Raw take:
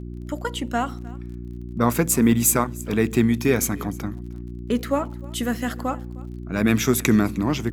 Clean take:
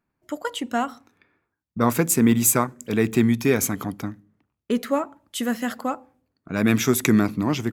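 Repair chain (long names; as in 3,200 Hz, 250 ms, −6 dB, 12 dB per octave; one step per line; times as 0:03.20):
click removal
hum removal 59.7 Hz, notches 6
echo removal 308 ms −22.5 dB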